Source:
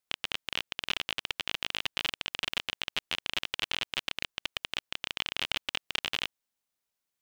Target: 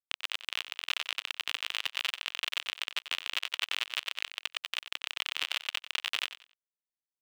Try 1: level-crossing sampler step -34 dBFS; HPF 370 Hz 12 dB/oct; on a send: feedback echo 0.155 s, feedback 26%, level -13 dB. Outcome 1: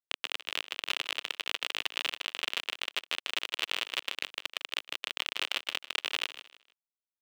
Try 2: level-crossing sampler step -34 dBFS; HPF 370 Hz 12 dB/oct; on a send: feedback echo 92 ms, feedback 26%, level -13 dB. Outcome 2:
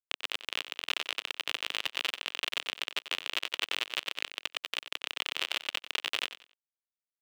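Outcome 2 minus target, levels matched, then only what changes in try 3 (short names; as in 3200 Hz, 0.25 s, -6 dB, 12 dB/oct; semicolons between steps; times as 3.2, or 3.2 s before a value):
500 Hz band +7.5 dB
change: HPF 840 Hz 12 dB/oct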